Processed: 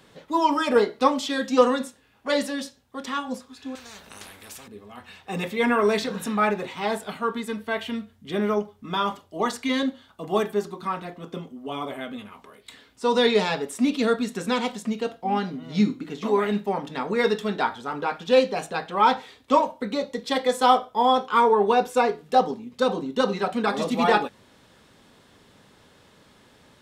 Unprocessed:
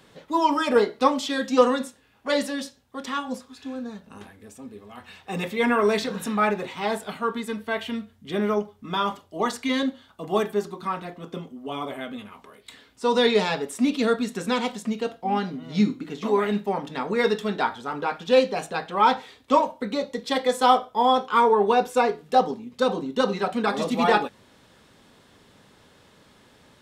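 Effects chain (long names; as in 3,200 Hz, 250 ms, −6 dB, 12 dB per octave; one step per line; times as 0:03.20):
0:03.75–0:04.68: every bin compressed towards the loudest bin 4 to 1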